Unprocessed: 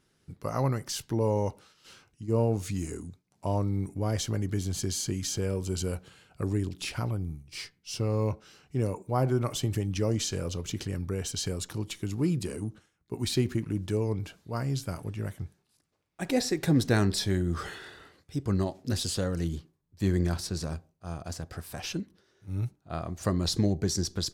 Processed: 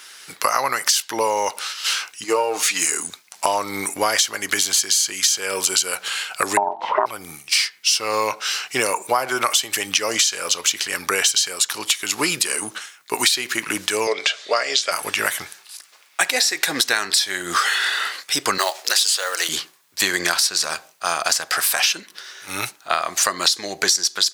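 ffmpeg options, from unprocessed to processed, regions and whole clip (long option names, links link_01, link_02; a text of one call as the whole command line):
ffmpeg -i in.wav -filter_complex "[0:a]asettb=1/sr,asplit=3[link_01][link_02][link_03];[link_01]atrim=end=2.244[link_04];[link_02]atrim=start=2.24:end=2.82,asetpts=PTS-STARTPTS,afade=type=in:duration=0.004:curve=qsin,afade=type=out:start_time=0.576:duration=0.004:curve=qsin,highpass=frequency=370:poles=1,highshelf=frequency=4500:gain=-8.5,aecho=1:1:6.5:0.68,atrim=end_sample=25578[link_05];[link_03]atrim=start=2.816[link_06];[link_04][link_05]acrossfade=duration=0.004:curve1=hsin:curve2=qsin[link_07];[link_07][link_06]acrossfade=duration=0.004:curve1=qsin:curve2=hsin,asettb=1/sr,asplit=3[link_08][link_09][link_10];[link_08]atrim=end=6.574[link_11];[link_09]atrim=start=6.57:end=7.06,asetpts=PTS-STARTPTS,afade=type=in:duration=0.004:curve=qsin,afade=type=out:start_time=0.486:duration=0.004:curve=qsin,lowpass=frequency=470:width_type=q:width=4.2,acontrast=73,aeval=exprs='val(0)*sin(2*PI*510*n/s)':channel_layout=same[link_12];[link_10]atrim=start=7.056[link_13];[link_11][link_12]acrossfade=duration=0.004:curve1=hsin:curve2=qsin[link_14];[link_14][link_13]acrossfade=duration=0.004:curve1=qsin:curve2=hsin,asettb=1/sr,asplit=3[link_15][link_16][link_17];[link_15]atrim=end=14.074[link_18];[link_16]atrim=start=14.07:end=14.92,asetpts=PTS-STARTPTS,afade=type=in:duration=0.004:curve=qsin,afade=type=out:start_time=0.846:duration=0.004:curve=qsin,highpass=370,equalizer=frequency=420:width_type=q:width=4:gain=7,equalizer=frequency=600:width_type=q:width=4:gain=9,equalizer=frequency=920:width_type=q:width=4:gain=-8,equalizer=frequency=2000:width_type=q:width=4:gain=3,equalizer=frequency=3500:width_type=q:width=4:gain=6,lowpass=frequency=7100:width=0.5412,lowpass=frequency=7100:width=1.3066,bandreject=frequency=1500:width=16[link_19];[link_17]atrim=start=14.916[link_20];[link_18][link_19]acrossfade=duration=0.004:curve1=hsin:curve2=qsin[link_21];[link_21][link_20]acrossfade=duration=0.004:curve1=qsin:curve2=hsin,asettb=1/sr,asplit=3[link_22][link_23][link_24];[link_22]atrim=end=18.584[link_25];[link_23]atrim=start=18.58:end=19.49,asetpts=PTS-STARTPTS,afade=type=in:duration=0.004:curve=qsin,afade=type=out:start_time=0.906:duration=0.004:curve=qsin,highpass=frequency=420:width=0.5412,highpass=frequency=420:width=1.3066,acrusher=bits=6:mode=log:mix=0:aa=0.000001[link_26];[link_24]atrim=start=19.486[link_27];[link_25][link_26]acrossfade=duration=0.004:curve1=hsin:curve2=qsin[link_28];[link_28][link_27]acrossfade=duration=0.004:curve1=qsin:curve2=hsin,highpass=1400,acompressor=threshold=-49dB:ratio=10,alimiter=level_in=34dB:limit=-1dB:release=50:level=0:latency=1,volume=-1dB" out.wav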